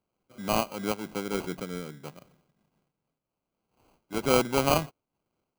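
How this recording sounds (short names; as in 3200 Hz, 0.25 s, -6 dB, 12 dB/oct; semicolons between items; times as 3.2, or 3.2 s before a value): aliases and images of a low sample rate 1800 Hz, jitter 0%; noise-modulated level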